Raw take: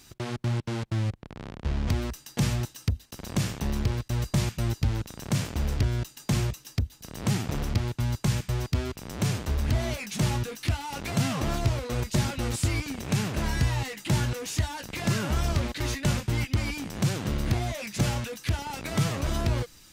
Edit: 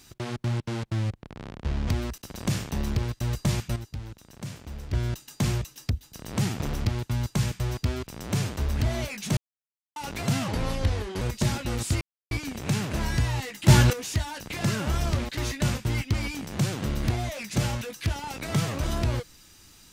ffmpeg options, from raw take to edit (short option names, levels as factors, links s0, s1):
-filter_complex "[0:a]asplit=11[s0][s1][s2][s3][s4][s5][s6][s7][s8][s9][s10];[s0]atrim=end=2.182[s11];[s1]atrim=start=3.068:end=4.652[s12];[s2]atrim=start=4.648:end=5.822,asetpts=PTS-STARTPTS,volume=0.299[s13];[s3]atrim=start=5.818:end=10.26,asetpts=PTS-STARTPTS,afade=t=out:st=4.438:d=0.004:c=hsin[s14];[s4]atrim=start=10.26:end=10.85,asetpts=PTS-STARTPTS,volume=0[s15];[s5]atrim=start=10.85:end=11.374,asetpts=PTS-STARTPTS,afade=t=in:d=0.004:c=hsin[s16];[s6]atrim=start=11.37:end=11.94,asetpts=PTS-STARTPTS,asetrate=34398,aresample=44100[s17];[s7]atrim=start=11.936:end=12.74,asetpts=PTS-STARTPTS,afade=t=out:st=0.8:d=0.004:c=hsin,apad=pad_dur=0.3[s18];[s8]atrim=start=12.74:end=14.112,asetpts=PTS-STARTPTS,afade=t=in:d=0.004:c=hsin[s19];[s9]atrim=start=14.108:end=14.362,asetpts=PTS-STARTPTS,volume=2.99[s20];[s10]atrim=start=14.358[s21];[s11][s12]acrossfade=d=0.004:c1=hsin:c2=hsin[s22];[s22][s13]acrossfade=d=0.004:c1=hsin:c2=hsin[s23];[s14][s15][s16]concat=n=3:v=0:a=1[s24];[s23][s24]acrossfade=d=0.004:c1=hsin:c2=hsin[s25];[s25][s17]acrossfade=d=0.004:c1=hsin:c2=hsin[s26];[s18][s19]concat=n=2:v=0:a=1[s27];[s26][s27]acrossfade=d=0.004:c1=hsin:c2=hsin[s28];[s28][s20]acrossfade=d=0.004:c1=hsin:c2=hsin[s29];[s29][s21]acrossfade=d=0.004:c1=hsin:c2=hsin"